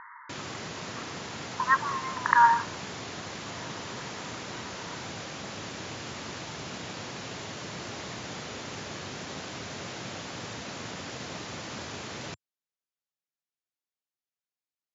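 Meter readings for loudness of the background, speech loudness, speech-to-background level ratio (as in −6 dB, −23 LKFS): −38.0 LKFS, −24.5 LKFS, 13.5 dB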